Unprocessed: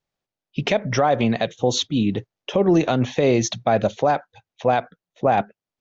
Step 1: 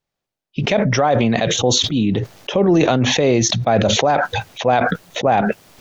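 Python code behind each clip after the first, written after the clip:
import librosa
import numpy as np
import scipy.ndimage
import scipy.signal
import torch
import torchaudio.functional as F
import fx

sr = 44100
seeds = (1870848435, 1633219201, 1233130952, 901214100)

y = fx.sustainer(x, sr, db_per_s=21.0)
y = y * librosa.db_to_amplitude(2.0)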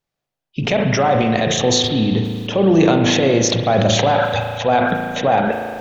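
y = fx.rev_spring(x, sr, rt60_s=2.1, pass_ms=(36,), chirp_ms=35, drr_db=3.5)
y = y * librosa.db_to_amplitude(-1.0)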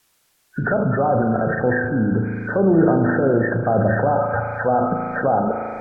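y = fx.freq_compress(x, sr, knee_hz=1200.0, ratio=4.0)
y = fx.quant_dither(y, sr, seeds[0], bits=10, dither='triangular')
y = fx.env_lowpass_down(y, sr, base_hz=1000.0, full_db=-12.5)
y = y * librosa.db_to_amplitude(-2.0)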